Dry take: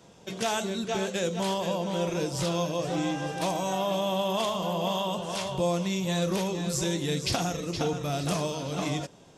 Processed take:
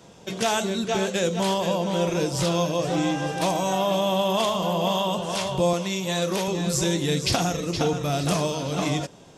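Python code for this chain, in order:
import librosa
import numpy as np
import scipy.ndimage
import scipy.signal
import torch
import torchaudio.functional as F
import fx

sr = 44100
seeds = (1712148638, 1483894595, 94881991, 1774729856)

y = fx.highpass(x, sr, hz=300.0, slope=6, at=(5.73, 6.48))
y = y * 10.0 ** (5.0 / 20.0)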